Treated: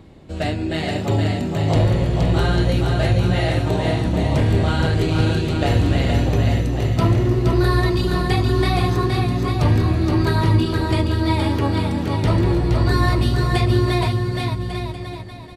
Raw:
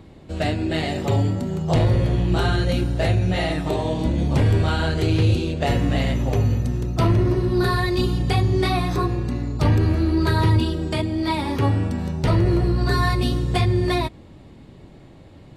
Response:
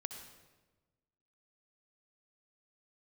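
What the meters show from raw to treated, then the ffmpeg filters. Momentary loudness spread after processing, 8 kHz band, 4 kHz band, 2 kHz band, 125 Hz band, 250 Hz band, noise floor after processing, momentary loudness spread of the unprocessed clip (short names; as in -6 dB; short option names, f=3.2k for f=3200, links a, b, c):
6 LU, +2.0 dB, +2.0 dB, +2.0 dB, +2.5 dB, +2.0 dB, -30 dBFS, 5 LU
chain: -af "aecho=1:1:470|846|1147|1387|1580:0.631|0.398|0.251|0.158|0.1"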